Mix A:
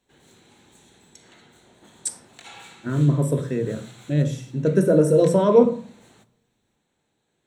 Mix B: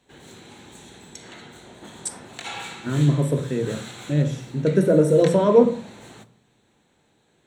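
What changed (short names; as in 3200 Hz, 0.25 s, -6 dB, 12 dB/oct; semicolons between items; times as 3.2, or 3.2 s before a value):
background +10.0 dB; master: add high shelf 6400 Hz -4 dB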